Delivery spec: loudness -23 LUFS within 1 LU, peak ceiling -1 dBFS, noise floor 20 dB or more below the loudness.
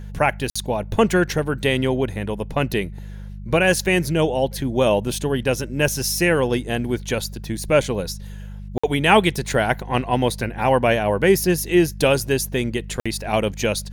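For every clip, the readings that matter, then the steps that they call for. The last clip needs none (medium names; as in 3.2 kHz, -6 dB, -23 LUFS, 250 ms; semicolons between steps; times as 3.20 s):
dropouts 3; longest dropout 55 ms; hum 50 Hz; highest harmonic 200 Hz; hum level -31 dBFS; loudness -20.5 LUFS; peak level -1.5 dBFS; loudness target -23.0 LUFS
-> interpolate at 0.50/8.78/13.00 s, 55 ms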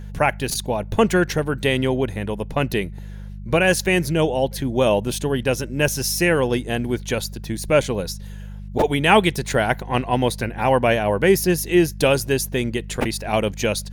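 dropouts 0; hum 50 Hz; highest harmonic 200 Hz; hum level -32 dBFS
-> de-hum 50 Hz, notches 4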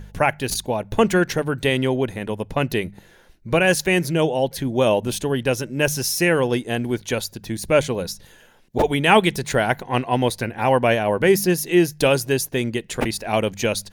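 hum not found; loudness -21.0 LUFS; peak level -1.5 dBFS; loudness target -23.0 LUFS
-> trim -2 dB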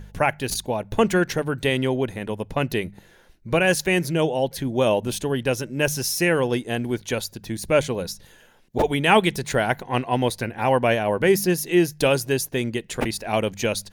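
loudness -23.0 LUFS; peak level -3.5 dBFS; noise floor -53 dBFS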